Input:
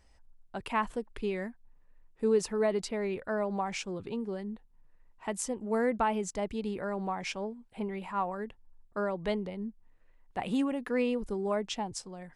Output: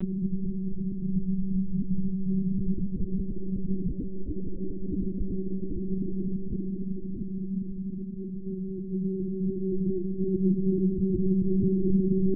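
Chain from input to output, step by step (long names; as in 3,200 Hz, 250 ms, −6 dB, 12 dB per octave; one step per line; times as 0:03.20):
Butterworth low-pass 560 Hz 72 dB per octave
in parallel at +1.5 dB: brickwall limiter −27 dBFS, peak gain reduction 10 dB
on the sum: extreme stretch with random phases 7.6×, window 1.00 s, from 0:07.61
frequency shifter −230 Hz
one-pitch LPC vocoder at 8 kHz 190 Hz
level +5.5 dB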